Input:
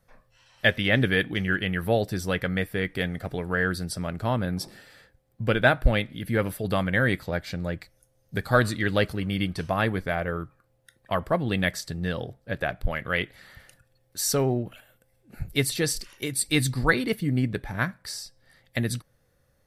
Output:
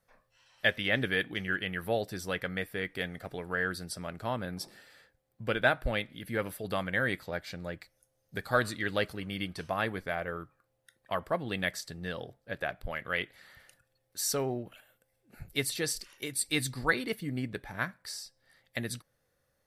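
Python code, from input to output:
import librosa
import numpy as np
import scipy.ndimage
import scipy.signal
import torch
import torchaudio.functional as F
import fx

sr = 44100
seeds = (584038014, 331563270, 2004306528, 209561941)

y = fx.low_shelf(x, sr, hz=240.0, db=-9.0)
y = y * librosa.db_to_amplitude(-5.0)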